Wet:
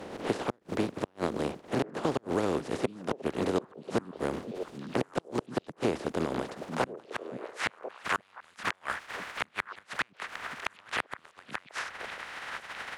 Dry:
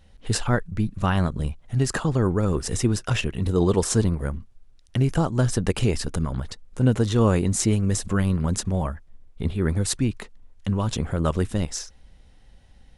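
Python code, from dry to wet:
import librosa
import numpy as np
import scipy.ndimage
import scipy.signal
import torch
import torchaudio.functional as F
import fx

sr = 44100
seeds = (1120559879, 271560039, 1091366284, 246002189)

p1 = fx.spec_flatten(x, sr, power=0.29)
p2 = fx.filter_sweep_bandpass(p1, sr, from_hz=380.0, to_hz=1600.0, start_s=6.32, end_s=7.42, q=1.2)
p3 = fx.gate_flip(p2, sr, shuts_db=-16.0, range_db=-39)
p4 = p3 + fx.echo_stepped(p3, sr, ms=521, hz=190.0, octaves=1.4, feedback_pct=70, wet_db=-11.0, dry=0)
p5 = fx.band_squash(p4, sr, depth_pct=70)
y = p5 * librosa.db_to_amplitude(2.5)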